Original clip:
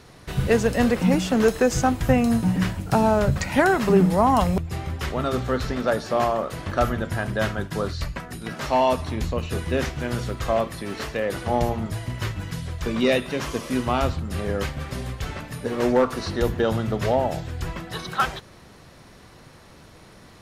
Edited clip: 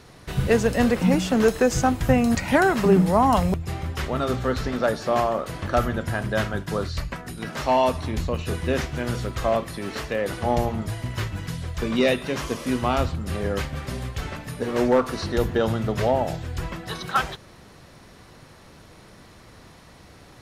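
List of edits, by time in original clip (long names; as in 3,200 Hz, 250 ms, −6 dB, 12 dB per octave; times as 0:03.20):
0:02.35–0:03.39: remove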